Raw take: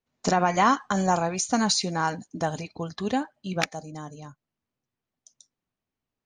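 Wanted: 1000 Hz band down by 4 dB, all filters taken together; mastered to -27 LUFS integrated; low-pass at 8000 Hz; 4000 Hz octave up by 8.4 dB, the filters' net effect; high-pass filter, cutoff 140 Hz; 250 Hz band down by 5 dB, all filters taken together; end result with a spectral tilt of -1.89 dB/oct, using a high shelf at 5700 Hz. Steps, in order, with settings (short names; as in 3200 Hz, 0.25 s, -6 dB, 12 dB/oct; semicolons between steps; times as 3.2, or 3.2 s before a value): HPF 140 Hz; LPF 8000 Hz; bell 250 Hz -5.5 dB; bell 1000 Hz -5.5 dB; bell 4000 Hz +8.5 dB; high shelf 5700 Hz +4.5 dB; gain -2 dB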